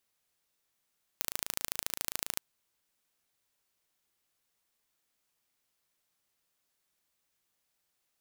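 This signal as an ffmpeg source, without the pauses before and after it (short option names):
-f lavfi -i "aevalsrc='0.631*eq(mod(n,1604),0)*(0.5+0.5*eq(mod(n,3208),0))':d=1.19:s=44100"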